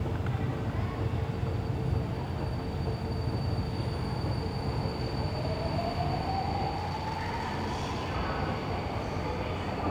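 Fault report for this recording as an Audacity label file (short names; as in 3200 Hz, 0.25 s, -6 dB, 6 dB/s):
6.760000	8.160000	clipped -29 dBFS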